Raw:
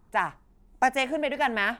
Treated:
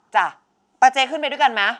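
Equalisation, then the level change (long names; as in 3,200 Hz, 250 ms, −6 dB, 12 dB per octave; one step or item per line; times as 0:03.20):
loudspeaker in its box 250–7,200 Hz, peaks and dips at 810 Hz +10 dB, 1,400 Hz +8 dB, 3,000 Hz +8 dB, 5,800 Hz +4 dB
high-shelf EQ 4,600 Hz +11 dB
+1.5 dB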